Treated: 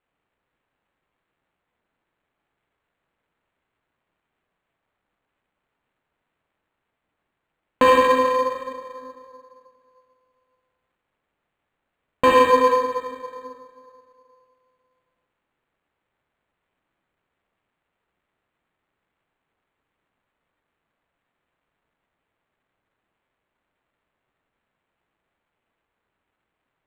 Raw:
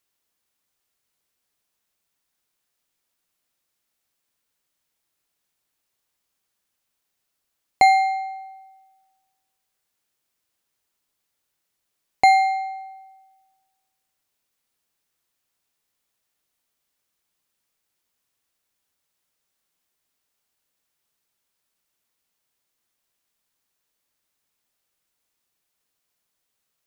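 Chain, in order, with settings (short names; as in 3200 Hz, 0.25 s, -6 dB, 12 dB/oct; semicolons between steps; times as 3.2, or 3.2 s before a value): tracing distortion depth 0.25 ms; on a send: tape echo 69 ms, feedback 56%, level -5 dB, low-pass 4500 Hz; on the sum: plate-style reverb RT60 2.4 s, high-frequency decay 0.55×, DRR -2 dB; ring modulator 260 Hz; decimation joined by straight lines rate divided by 8×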